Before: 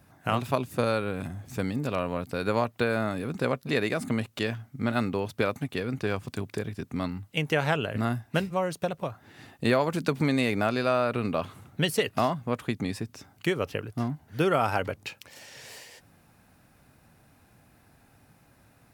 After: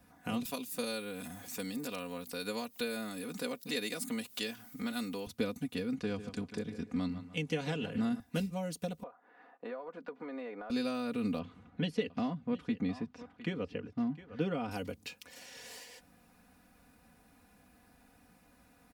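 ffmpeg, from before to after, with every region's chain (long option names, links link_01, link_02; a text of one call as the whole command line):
ffmpeg -i in.wav -filter_complex "[0:a]asettb=1/sr,asplit=3[link_01][link_02][link_03];[link_01]atrim=end=0.454[link_04];[link_02]atrim=start=0.45:end=5.27,asetpts=PTS-STARTPTS,afade=type=in:duration=0.004:curve=qsin,afade=type=out:start_time=4.816:duration=0.004:curve=qsin,aemphasis=mode=production:type=riaa,acompressor=mode=upward:threshold=-29dB:ratio=2.5:attack=3.2:release=140:knee=2.83:detection=peak,lowpass=frequency=4000:poles=1[link_05];[link_03]atrim=start=5.266[link_06];[link_04][link_05]acrossfade=duration=0.004:curve1=hsin:curve2=qsin[link_07];[link_07][link_06]acrossfade=duration=0.004:curve1=qsin:curve2=hsin,asettb=1/sr,asplit=3[link_08][link_09][link_10];[link_08]atrim=end=5.954[link_11];[link_09]atrim=start=5.95:end=8.2,asetpts=PTS-STARTPTS,afade=type=in:duration=0.004:curve=qsin,afade=type=out:start_time=2.246:duration=0.004:curve=qsin,lowpass=7500,asplit=2[link_12][link_13];[link_13]adelay=147,lowpass=frequency=3300:poles=1,volume=-12.5dB,asplit=2[link_14][link_15];[link_15]adelay=147,lowpass=frequency=3300:poles=1,volume=0.29,asplit=2[link_16][link_17];[link_17]adelay=147,lowpass=frequency=3300:poles=1,volume=0.29[link_18];[link_12][link_14][link_16][link_18]amix=inputs=4:normalize=0,atrim=end_sample=99225[link_19];[link_10]atrim=start=8.196[link_20];[link_11][link_19]acrossfade=duration=0.004:curve1=hsin:curve2=qsin[link_21];[link_21][link_20]acrossfade=duration=0.004:curve1=qsin:curve2=hsin,asettb=1/sr,asplit=3[link_22][link_23][link_24];[link_22]atrim=end=9.034[link_25];[link_23]atrim=start=9.03:end=10.7,asetpts=PTS-STARTPTS,afade=type=in:duration=0.004:curve=qsin,afade=type=out:start_time=1.666:duration=0.004:curve=qsin,asuperpass=centerf=840:order=4:qfactor=0.79,acompressor=threshold=-32dB:ratio=2.5:attack=3.2:release=140:knee=1:detection=peak[link_26];[link_24]atrim=start=10.696[link_27];[link_25][link_26]acrossfade=duration=0.004:curve1=hsin:curve2=qsin[link_28];[link_28][link_27]acrossfade=duration=0.004:curve1=qsin:curve2=hsin,asettb=1/sr,asplit=3[link_29][link_30][link_31];[link_29]atrim=end=11.394[link_32];[link_30]atrim=start=11.39:end=14.71,asetpts=PTS-STARTPTS,afade=type=in:duration=0.004:curve=qsin,afade=type=out:start_time=3.316:duration=0.004:curve=qsin,lowpass=2800,aecho=1:1:708:0.119,atrim=end_sample=146412[link_33];[link_31]atrim=start=14.706[link_34];[link_32][link_33]acrossfade=duration=0.004:curve1=hsin:curve2=qsin[link_35];[link_35][link_34]acrossfade=duration=0.004:curve1=qsin:curve2=hsin,aecho=1:1:4.1:0.84,acrossover=split=420|3000[link_36][link_37][link_38];[link_37]acompressor=threshold=-45dB:ratio=2.5[link_39];[link_36][link_39][link_38]amix=inputs=3:normalize=0,volume=-5.5dB" out.wav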